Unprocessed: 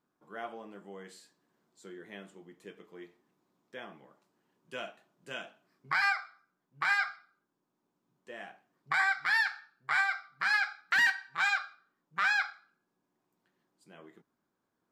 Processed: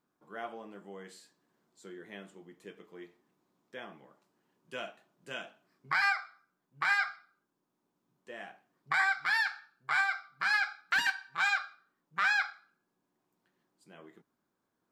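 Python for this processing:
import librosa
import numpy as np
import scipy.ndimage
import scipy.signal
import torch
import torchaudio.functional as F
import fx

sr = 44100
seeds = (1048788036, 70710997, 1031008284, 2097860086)

y = fx.notch(x, sr, hz=1900.0, q=9.6, at=(9.05, 11.51))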